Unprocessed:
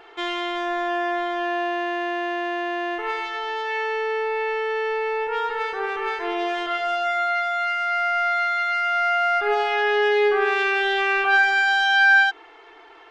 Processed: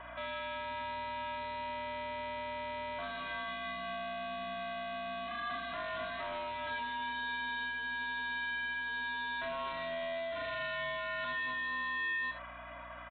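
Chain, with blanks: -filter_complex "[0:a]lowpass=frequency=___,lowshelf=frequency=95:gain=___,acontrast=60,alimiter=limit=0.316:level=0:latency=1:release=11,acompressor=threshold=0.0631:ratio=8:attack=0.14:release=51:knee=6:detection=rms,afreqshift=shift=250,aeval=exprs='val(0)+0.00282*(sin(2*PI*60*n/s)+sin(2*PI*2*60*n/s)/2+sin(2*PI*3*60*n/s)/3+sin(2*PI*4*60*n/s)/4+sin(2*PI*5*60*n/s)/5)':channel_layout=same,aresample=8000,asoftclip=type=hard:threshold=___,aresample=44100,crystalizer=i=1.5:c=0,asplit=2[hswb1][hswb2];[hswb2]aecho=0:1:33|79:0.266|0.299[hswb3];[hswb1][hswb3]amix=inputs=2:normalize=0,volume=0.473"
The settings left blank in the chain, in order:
1.7k, 5.5, 0.0282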